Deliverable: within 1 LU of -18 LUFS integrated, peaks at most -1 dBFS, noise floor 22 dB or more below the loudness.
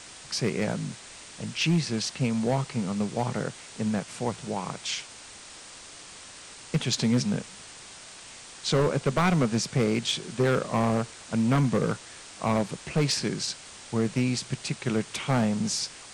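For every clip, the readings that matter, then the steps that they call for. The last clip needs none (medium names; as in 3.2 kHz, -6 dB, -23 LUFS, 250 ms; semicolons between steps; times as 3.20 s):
clipped samples 1.0%; clipping level -17.5 dBFS; noise floor -46 dBFS; noise floor target -50 dBFS; loudness -27.5 LUFS; peak level -17.5 dBFS; loudness target -18.0 LUFS
-> clip repair -17.5 dBFS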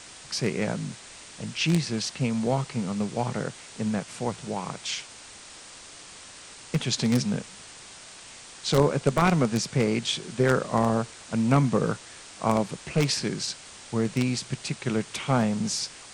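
clipped samples 0.0%; noise floor -46 dBFS; noise floor target -49 dBFS
-> noise reduction 6 dB, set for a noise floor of -46 dBFS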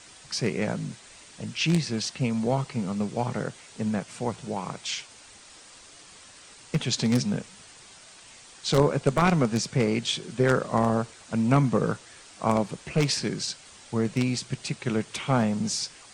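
noise floor -50 dBFS; loudness -27.0 LUFS; peak level -8.5 dBFS; loudness target -18.0 LUFS
-> trim +9 dB; peak limiter -1 dBFS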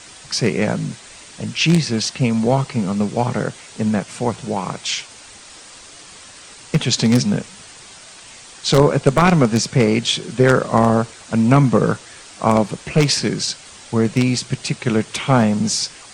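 loudness -18.0 LUFS; peak level -1.0 dBFS; noise floor -41 dBFS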